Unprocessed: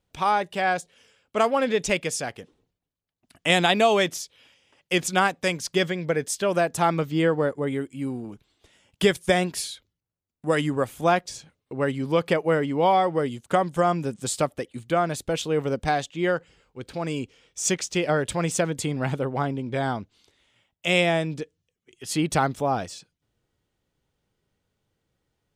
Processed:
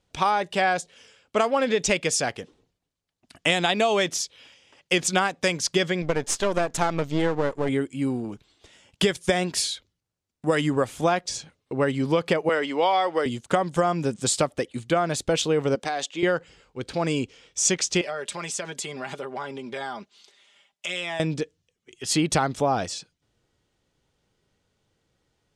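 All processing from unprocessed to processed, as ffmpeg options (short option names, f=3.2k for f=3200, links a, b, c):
-filter_complex "[0:a]asettb=1/sr,asplit=3[a][b][c];[a]atrim=end=6.024[d];[b]atrim=start=6.02:end=7.69,asetpts=PTS-STARTPTS,afade=t=in:d=0.004:c=qsin,afade=t=out:st=1.666:d=0.004:c=qsin,aeval=exprs='if(lt(val(0),0),0.251*val(0),val(0))':c=same,equalizer=f=6.9k:w=6:g=3[e];[c]atrim=start=7.686[f];[d][e]acrossfade=d=0.004:c1=hsin:c2=qsin[g];[g][f]acrossfade=d=0.004:c1=qsin:c2=hsin,asettb=1/sr,asplit=3[h][i][j];[h]atrim=end=12.494[k];[i]atrim=start=12.49:end=13.26,asetpts=PTS-STARTPTS,afade=t=in:d=0.004:c=qsin,afade=t=out:st=0.766:d=0.004:c=qsin,highpass=230,lowpass=4.1k,aemphasis=mode=production:type=riaa[l];[j]atrim=start=13.256[m];[k][l]acrossfade=d=0.004:c1=hsin:c2=qsin[n];[n][m]acrossfade=d=0.004:c1=qsin:c2=hsin,asettb=1/sr,asplit=3[o][p][q];[o]atrim=end=15.754[r];[p]atrim=start=15.75:end=16.23,asetpts=PTS-STARTPTS,afade=t=in:d=0.004:c=qsin,afade=t=out:st=0.476:d=0.004:c=qsin,highpass=310,acompressor=threshold=-28dB:ratio=10:attack=3.2:release=140:knee=1:detection=peak[s];[q]atrim=start=16.226[t];[r][s]acrossfade=d=0.004:c1=hsin:c2=qsin[u];[u][t]acrossfade=d=0.004:c1=qsin:c2=hsin,asettb=1/sr,asplit=3[v][w][x];[v]atrim=end=18.014[y];[w]atrim=start=18.01:end=21.2,asetpts=PTS-STARTPTS,afade=t=in:d=0.004:c=qsin,afade=t=out:st=3.186:d=0.004:c=qsin,highpass=f=700:p=1,aecho=1:1:5:0.65,atrim=end_sample=140679,acompressor=threshold=-36dB:ratio=3:attack=3.2:release=140:knee=1:detection=peak[z];[x]atrim=start=21.196[aa];[y][z]acrossfade=d=0.004:c1=hsin:c2=qsin[ab];[ab][aa]acrossfade=d=0.004:c1=qsin:c2=hsin,lowpass=7.7k,bass=f=250:g=-2,treble=f=4k:g=4,acompressor=threshold=-23dB:ratio=6,volume=5dB"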